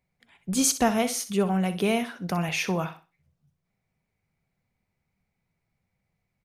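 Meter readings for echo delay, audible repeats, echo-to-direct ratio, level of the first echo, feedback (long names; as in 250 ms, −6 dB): 63 ms, 2, −12.5 dB, −13.0 dB, 26%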